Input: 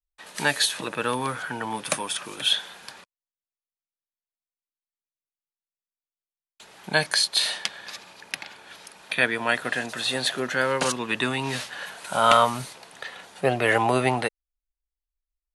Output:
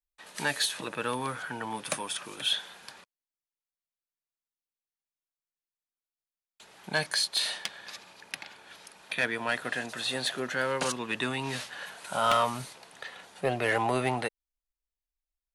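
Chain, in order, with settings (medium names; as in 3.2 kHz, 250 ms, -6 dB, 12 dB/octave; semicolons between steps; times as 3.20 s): saturation -11 dBFS, distortion -17 dB; trim -5 dB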